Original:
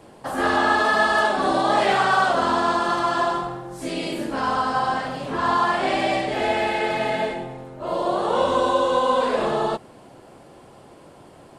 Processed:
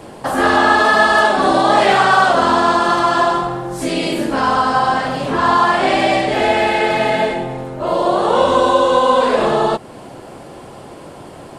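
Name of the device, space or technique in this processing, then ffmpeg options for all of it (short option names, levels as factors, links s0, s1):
parallel compression: -filter_complex "[0:a]asplit=2[s0][s1];[s1]acompressor=threshold=0.0251:ratio=6,volume=1[s2];[s0][s2]amix=inputs=2:normalize=0,volume=1.88"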